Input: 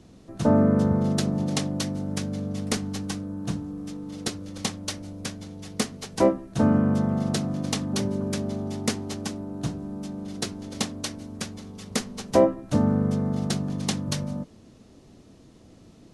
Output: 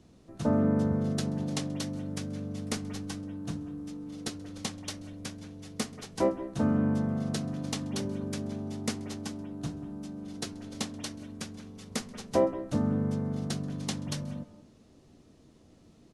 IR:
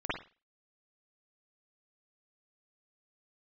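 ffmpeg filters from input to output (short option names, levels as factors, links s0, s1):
-filter_complex "[0:a]asplit=2[s0][s1];[s1]adelay=13,volume=0.211[s2];[s0][s2]amix=inputs=2:normalize=0,asplit=2[s3][s4];[1:a]atrim=start_sample=2205,adelay=132[s5];[s4][s5]afir=irnorm=-1:irlink=0,volume=0.1[s6];[s3][s6]amix=inputs=2:normalize=0,volume=0.447"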